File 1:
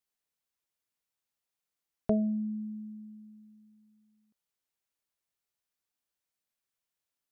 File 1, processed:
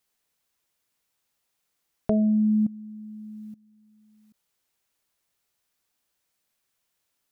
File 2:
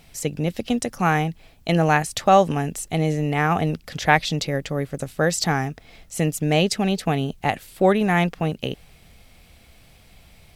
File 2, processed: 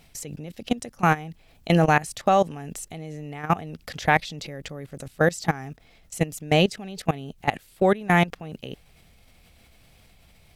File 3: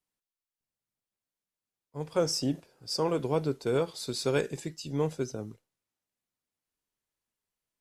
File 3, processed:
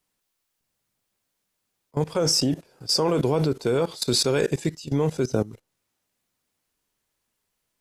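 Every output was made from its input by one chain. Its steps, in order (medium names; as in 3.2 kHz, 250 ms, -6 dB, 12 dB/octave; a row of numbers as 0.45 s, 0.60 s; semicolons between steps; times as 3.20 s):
level held to a coarse grid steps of 19 dB; normalise loudness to -24 LUFS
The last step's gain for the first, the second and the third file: +17.5 dB, +2.0 dB, +16.5 dB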